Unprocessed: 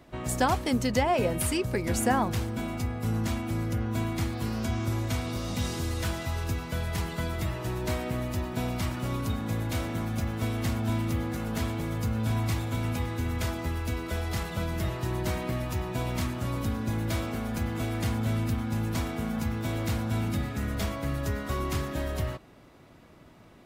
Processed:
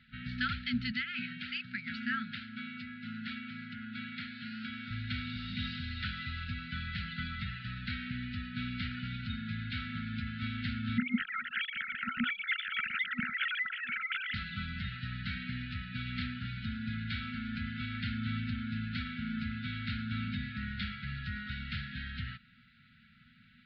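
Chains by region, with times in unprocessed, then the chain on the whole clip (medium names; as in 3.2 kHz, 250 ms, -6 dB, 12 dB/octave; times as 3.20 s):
0.92–4.91 s: high-pass 250 Hz + treble shelf 5.3 kHz -5.5 dB + companded quantiser 8-bit
10.98–14.34 s: formants replaced by sine waves + phaser 1.4 Hz, delay 1.6 ms
whole clip: steep low-pass 4.4 kHz 72 dB/octave; bass shelf 180 Hz -12 dB; FFT band-reject 250–1300 Hz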